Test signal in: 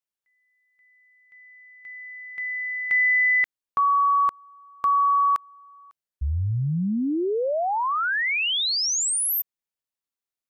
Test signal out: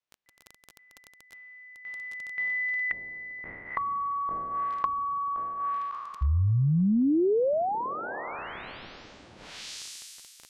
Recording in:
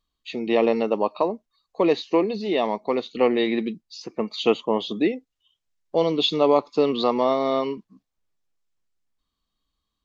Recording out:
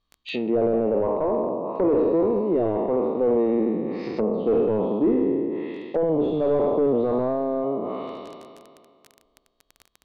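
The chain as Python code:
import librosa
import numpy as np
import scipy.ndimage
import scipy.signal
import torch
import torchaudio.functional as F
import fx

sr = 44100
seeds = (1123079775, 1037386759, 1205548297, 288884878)

y = fx.spec_trails(x, sr, decay_s=2.11)
y = fx.cheby_harmonics(y, sr, harmonics=(5, 8), levels_db=(-19, -36), full_scale_db=4.5)
y = scipy.signal.sosfilt(scipy.signal.butter(2, 4500.0, 'lowpass', fs=sr, output='sos'), y)
y = np.clip(10.0 ** (11.5 / 20.0) * y, -1.0, 1.0) / 10.0 ** (11.5 / 20.0)
y = fx.dmg_crackle(y, sr, seeds[0], per_s=18.0, level_db=-26.0)
y = fx.env_lowpass_down(y, sr, base_hz=590.0, full_db=-17.5)
y = y * librosa.db_to_amplitude(-3.0)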